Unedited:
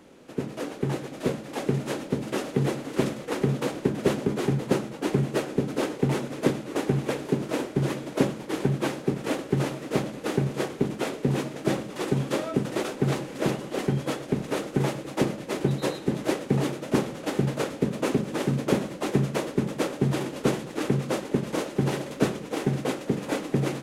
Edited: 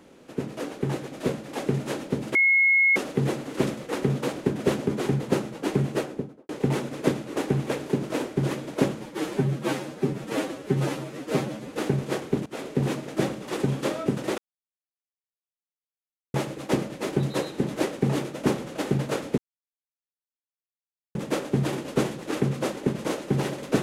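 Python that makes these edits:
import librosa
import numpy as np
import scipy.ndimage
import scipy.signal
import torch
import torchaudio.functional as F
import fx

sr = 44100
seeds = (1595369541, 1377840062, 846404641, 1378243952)

y = fx.studio_fade_out(x, sr, start_s=5.3, length_s=0.58)
y = fx.edit(y, sr, fx.insert_tone(at_s=2.35, length_s=0.61, hz=2170.0, db=-16.0),
    fx.stretch_span(start_s=8.39, length_s=1.82, factor=1.5),
    fx.fade_in_from(start_s=10.94, length_s=0.25, floor_db=-18.0),
    fx.silence(start_s=12.86, length_s=1.96),
    fx.silence(start_s=17.86, length_s=1.77), tone=tone)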